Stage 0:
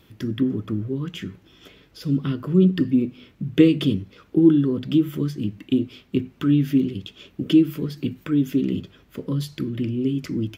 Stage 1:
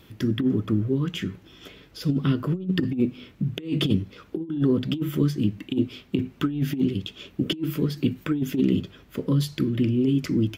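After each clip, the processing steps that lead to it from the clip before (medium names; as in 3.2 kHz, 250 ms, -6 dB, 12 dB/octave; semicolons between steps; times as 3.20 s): compressor with a negative ratio -21 dBFS, ratio -0.5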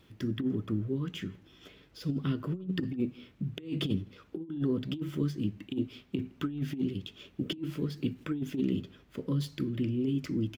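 median filter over 3 samples; echo from a far wall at 28 m, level -27 dB; trim -8.5 dB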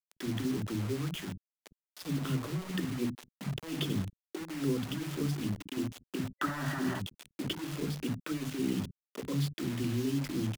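bit crusher 7-bit; bands offset in time highs, lows 50 ms, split 240 Hz; time-frequency box 6.37–7.00 s, 540–2000 Hz +11 dB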